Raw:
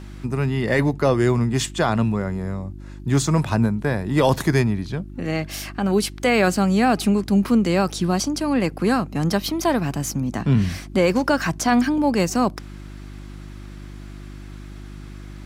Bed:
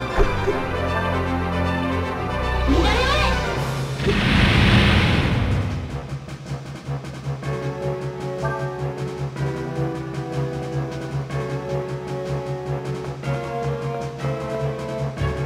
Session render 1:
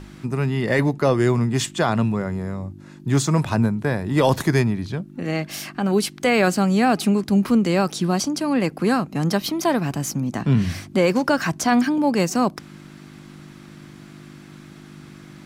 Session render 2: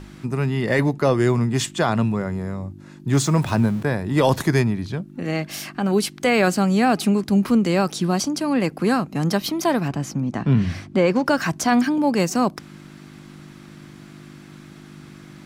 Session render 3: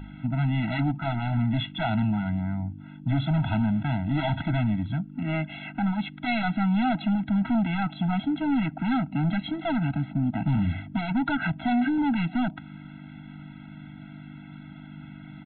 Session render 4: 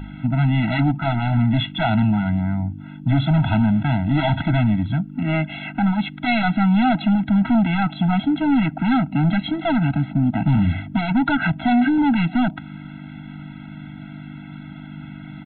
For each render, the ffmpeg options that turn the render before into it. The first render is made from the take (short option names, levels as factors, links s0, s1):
-af "bandreject=f=50:t=h:w=4,bandreject=f=100:t=h:w=4"
-filter_complex "[0:a]asettb=1/sr,asplit=3[s0][s1][s2];[s0]atrim=end=3.134[s3];[s1]atrim=start=3.13:end=3.83,asetpts=PTS-STARTPTS,afade=t=in:d=0.004:c=qsin,afade=t=out:st=0.696:d=0.004:c=qsin,aeval=exprs='val(0)+0.5*0.0188*sgn(val(0))':c=same[s4];[s2]atrim=start=3.826[s5];[s3][s4]acrossfade=d=0.004:c1=hsin:c2=qsin[s6];[s6][s5]acrossfade=d=0.004:c1=qsin:c2=hsin,asettb=1/sr,asplit=3[s7][s8][s9];[s7]atrim=end=9.884[s10];[s8]atrim=start=9.88:end=11.26,asetpts=PTS-STARTPTS,afade=t=in:d=0.004:c=qsin,afade=t=out:st=1.376:d=0.004:c=qsin,aemphasis=mode=reproduction:type=50fm[s11];[s9]atrim=start=11.256[s12];[s10][s11]acrossfade=d=0.004:c1=hsin:c2=qsin[s13];[s13][s12]acrossfade=d=0.004:c1=qsin:c2=hsin"
-af "aresample=8000,asoftclip=type=hard:threshold=0.0944,aresample=44100,afftfilt=real='re*eq(mod(floor(b*sr/1024/320),2),0)':imag='im*eq(mod(floor(b*sr/1024/320),2),0)':win_size=1024:overlap=0.75"
-af "volume=2.24"